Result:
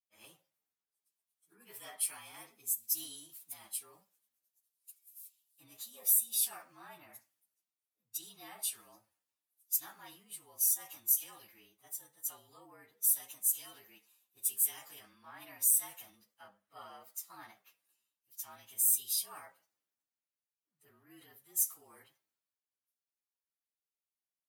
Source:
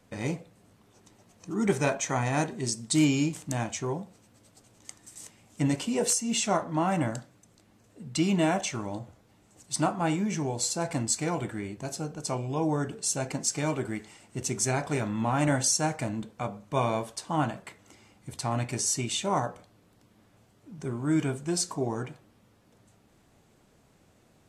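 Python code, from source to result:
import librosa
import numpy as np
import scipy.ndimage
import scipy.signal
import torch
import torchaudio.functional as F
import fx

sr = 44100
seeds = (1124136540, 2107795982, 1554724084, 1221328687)

p1 = fx.partial_stretch(x, sr, pct=112)
p2 = fx.over_compress(p1, sr, threshold_db=-35.0, ratio=-1.0)
p3 = p1 + (p2 * librosa.db_to_amplitude(-2.0))
p4 = np.diff(p3, prepend=0.0)
p5 = fx.band_widen(p4, sr, depth_pct=70)
y = p5 * librosa.db_to_amplitude(-7.5)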